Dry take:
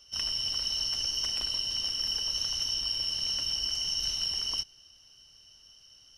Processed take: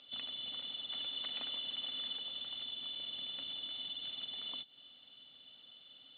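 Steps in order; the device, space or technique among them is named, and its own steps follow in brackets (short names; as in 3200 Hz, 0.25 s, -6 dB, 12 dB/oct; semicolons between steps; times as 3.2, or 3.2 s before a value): hearing aid with frequency lowering (nonlinear frequency compression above 3000 Hz 4:1; compressor 4:1, threshold -38 dBFS, peak gain reduction 12 dB; speaker cabinet 250–5000 Hz, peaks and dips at 260 Hz +8 dB, 370 Hz -9 dB, 1000 Hz -7 dB, 1600 Hz -7 dB, 3500 Hz -10 dB); 0.9–2.17 bell 1500 Hz +4 dB 2.6 oct; gain +4.5 dB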